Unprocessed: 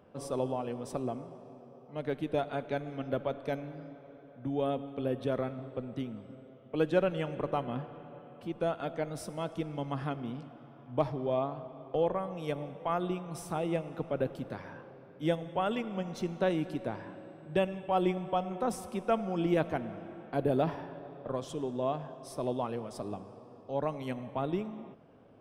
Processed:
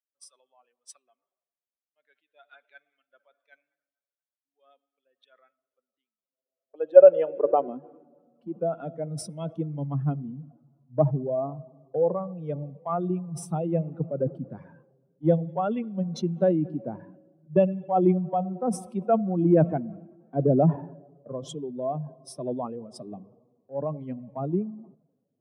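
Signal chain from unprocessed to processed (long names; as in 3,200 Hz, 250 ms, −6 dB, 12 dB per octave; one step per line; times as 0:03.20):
expanding power law on the bin magnitudes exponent 1.8
high-pass filter sweep 1,600 Hz → 150 Hz, 0:05.72–0:08.87
multiband upward and downward expander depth 100%
level +2 dB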